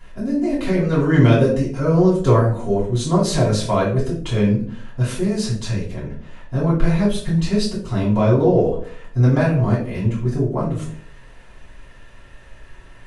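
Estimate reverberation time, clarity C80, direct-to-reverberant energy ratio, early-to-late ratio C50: 0.50 s, 10.0 dB, −8.5 dB, 5.5 dB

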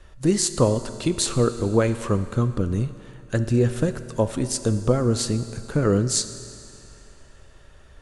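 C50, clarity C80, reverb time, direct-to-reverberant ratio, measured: 12.0 dB, 12.5 dB, 2.5 s, 10.5 dB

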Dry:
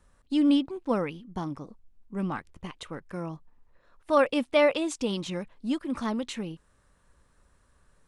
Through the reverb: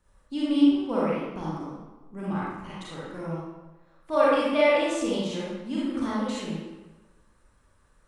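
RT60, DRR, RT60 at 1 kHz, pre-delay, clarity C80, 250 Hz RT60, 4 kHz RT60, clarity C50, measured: 1.2 s, −7.5 dB, 1.2 s, 31 ms, 0.5 dB, 1.1 s, 0.85 s, −4.0 dB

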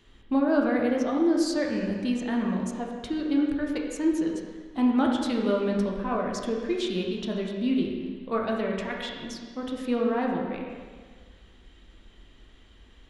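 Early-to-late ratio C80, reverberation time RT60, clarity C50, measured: 3.5 dB, 1.7 s, 2.0 dB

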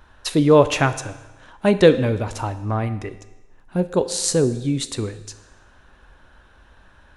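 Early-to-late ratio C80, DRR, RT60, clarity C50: 15.5 dB, 11.0 dB, 1.1 s, 13.5 dB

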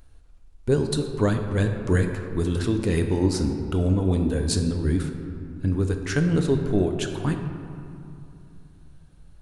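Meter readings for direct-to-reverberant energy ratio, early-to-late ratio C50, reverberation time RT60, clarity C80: 4.5 dB, 6.0 dB, 2.7 s, 7.0 dB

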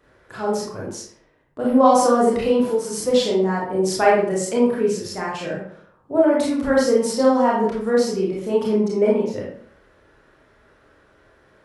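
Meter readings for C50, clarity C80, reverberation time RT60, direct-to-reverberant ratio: 1.5 dB, 6.5 dB, 0.55 s, −4.5 dB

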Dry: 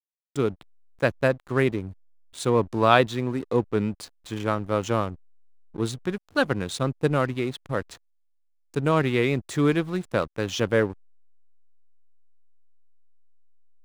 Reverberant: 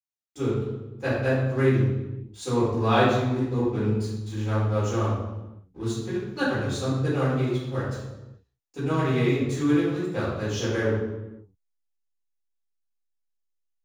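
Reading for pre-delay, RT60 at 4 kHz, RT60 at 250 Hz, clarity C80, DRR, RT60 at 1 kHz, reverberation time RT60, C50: 3 ms, 0.80 s, 1.4 s, 2.5 dB, −12.5 dB, 0.95 s, 1.1 s, −0.5 dB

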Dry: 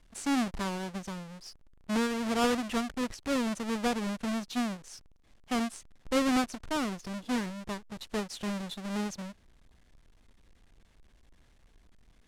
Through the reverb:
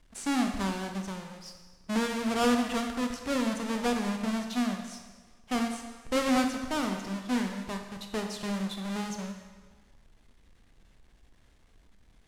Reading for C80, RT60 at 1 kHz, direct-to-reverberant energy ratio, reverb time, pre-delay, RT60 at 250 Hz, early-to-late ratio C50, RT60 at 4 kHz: 7.5 dB, 1.4 s, 4.0 dB, 1.4 s, 17 ms, 1.2 s, 6.0 dB, 1.3 s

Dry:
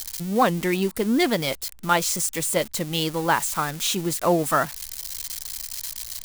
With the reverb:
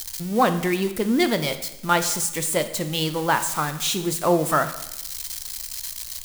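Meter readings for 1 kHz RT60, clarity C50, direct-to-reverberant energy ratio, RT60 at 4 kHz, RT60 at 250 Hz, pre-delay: 0.90 s, 11.5 dB, 9.0 dB, 0.85 s, 0.95 s, 6 ms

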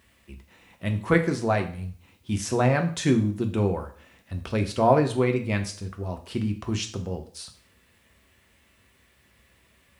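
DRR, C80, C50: 4.5 dB, 16.0 dB, 12.0 dB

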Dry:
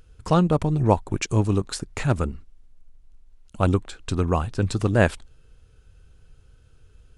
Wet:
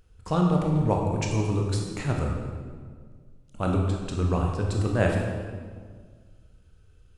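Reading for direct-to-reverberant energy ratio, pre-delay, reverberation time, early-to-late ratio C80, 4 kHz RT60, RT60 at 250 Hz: 0.0 dB, 17 ms, 1.8 s, 4.0 dB, 1.2 s, 2.1 s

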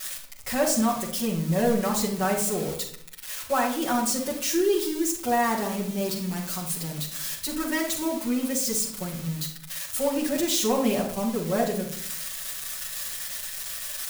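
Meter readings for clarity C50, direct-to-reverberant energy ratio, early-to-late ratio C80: 6.5 dB, −7.0 dB, 10.5 dB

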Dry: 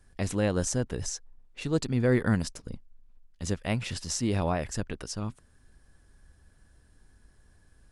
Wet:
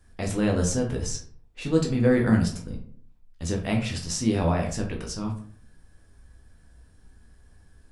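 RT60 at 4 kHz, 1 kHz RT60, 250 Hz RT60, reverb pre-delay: 0.30 s, 0.45 s, 0.70 s, 10 ms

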